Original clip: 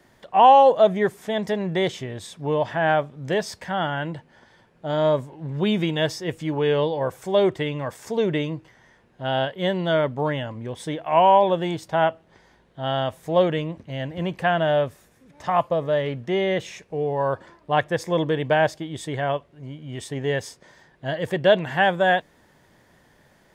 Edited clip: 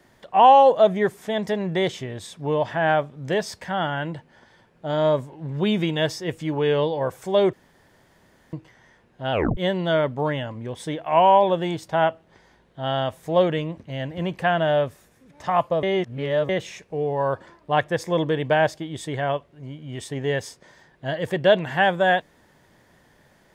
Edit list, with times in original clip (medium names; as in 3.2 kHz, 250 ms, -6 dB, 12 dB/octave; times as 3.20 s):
7.53–8.53 s: room tone
9.32 s: tape stop 0.25 s
15.83–16.49 s: reverse